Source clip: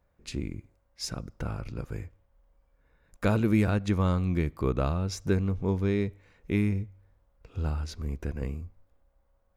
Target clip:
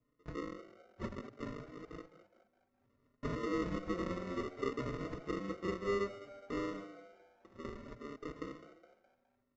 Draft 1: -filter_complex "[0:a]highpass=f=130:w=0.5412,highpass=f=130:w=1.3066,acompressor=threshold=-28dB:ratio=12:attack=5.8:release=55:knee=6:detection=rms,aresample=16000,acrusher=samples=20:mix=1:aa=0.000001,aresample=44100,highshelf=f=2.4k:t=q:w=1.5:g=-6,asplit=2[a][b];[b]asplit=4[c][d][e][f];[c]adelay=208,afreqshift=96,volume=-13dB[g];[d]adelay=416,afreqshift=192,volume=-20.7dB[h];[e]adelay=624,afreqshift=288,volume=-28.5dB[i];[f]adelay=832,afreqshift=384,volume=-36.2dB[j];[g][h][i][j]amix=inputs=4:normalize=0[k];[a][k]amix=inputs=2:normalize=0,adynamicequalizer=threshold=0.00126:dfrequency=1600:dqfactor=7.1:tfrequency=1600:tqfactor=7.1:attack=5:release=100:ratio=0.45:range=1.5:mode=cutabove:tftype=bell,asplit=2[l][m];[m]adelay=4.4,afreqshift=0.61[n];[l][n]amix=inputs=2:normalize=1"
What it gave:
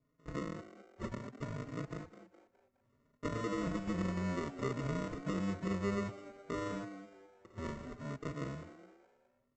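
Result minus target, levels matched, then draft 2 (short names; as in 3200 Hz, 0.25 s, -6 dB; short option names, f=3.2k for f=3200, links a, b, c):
125 Hz band +5.5 dB; 8000 Hz band +4.0 dB
-filter_complex "[0:a]highpass=f=270:w=0.5412,highpass=f=270:w=1.3066,acompressor=threshold=-28dB:ratio=12:attack=5.8:release=55:knee=6:detection=rms,aresample=16000,acrusher=samples=20:mix=1:aa=0.000001,aresample=44100,lowpass=f=6k:w=0.5412,lowpass=f=6k:w=1.3066,highshelf=f=2.4k:t=q:w=1.5:g=-6,asplit=2[a][b];[b]asplit=4[c][d][e][f];[c]adelay=208,afreqshift=96,volume=-13dB[g];[d]adelay=416,afreqshift=192,volume=-20.7dB[h];[e]adelay=624,afreqshift=288,volume=-28.5dB[i];[f]adelay=832,afreqshift=384,volume=-36.2dB[j];[g][h][i][j]amix=inputs=4:normalize=0[k];[a][k]amix=inputs=2:normalize=0,adynamicequalizer=threshold=0.00126:dfrequency=1600:dqfactor=7.1:tfrequency=1600:tqfactor=7.1:attack=5:release=100:ratio=0.45:range=1.5:mode=cutabove:tftype=bell,asplit=2[l][m];[m]adelay=4.4,afreqshift=0.61[n];[l][n]amix=inputs=2:normalize=1"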